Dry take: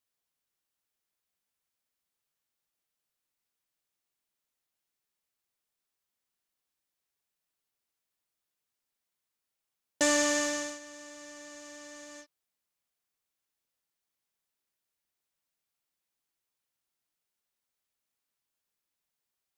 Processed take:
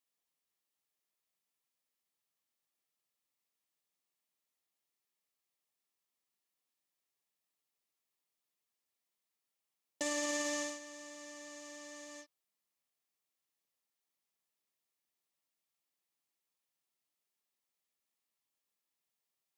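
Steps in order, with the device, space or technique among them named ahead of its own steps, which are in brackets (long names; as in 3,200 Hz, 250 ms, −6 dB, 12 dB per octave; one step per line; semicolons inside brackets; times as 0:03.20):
PA system with an anti-feedback notch (high-pass filter 140 Hz 12 dB per octave; Butterworth band-reject 1,500 Hz, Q 7.8; brickwall limiter −23 dBFS, peak gain reduction 10.5 dB)
level −2.5 dB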